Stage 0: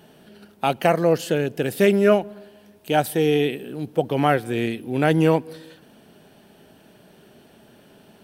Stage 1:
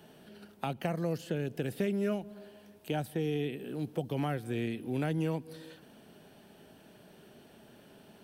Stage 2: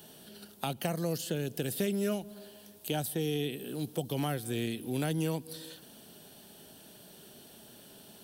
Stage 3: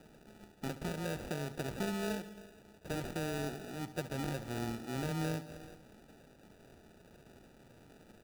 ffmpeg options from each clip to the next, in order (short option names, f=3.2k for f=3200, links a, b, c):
-filter_complex "[0:a]acrossover=split=240|3400[a][b][c];[a]acompressor=threshold=-28dB:ratio=4[d];[b]acompressor=threshold=-31dB:ratio=4[e];[c]acompressor=threshold=-49dB:ratio=4[f];[d][e][f]amix=inputs=3:normalize=0,volume=-5dB"
-af "aexciter=amount=2.8:drive=6.9:freq=3.2k"
-af "acrusher=samples=41:mix=1:aa=0.000001,aecho=1:1:69|138|207|276|345:0.188|0.0998|0.0529|0.028|0.0149,volume=-5.5dB"